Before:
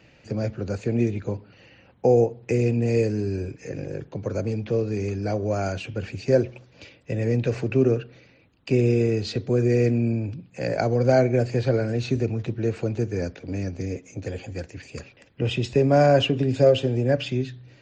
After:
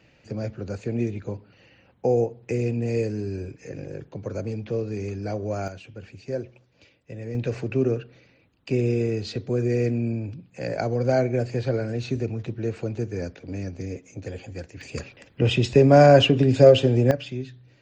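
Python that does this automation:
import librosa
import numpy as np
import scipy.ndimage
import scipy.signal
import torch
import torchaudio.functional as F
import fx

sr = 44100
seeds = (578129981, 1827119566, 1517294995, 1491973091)

y = fx.gain(x, sr, db=fx.steps((0.0, -3.5), (5.68, -10.5), (7.35, -3.0), (14.81, 4.0), (17.11, -6.0)))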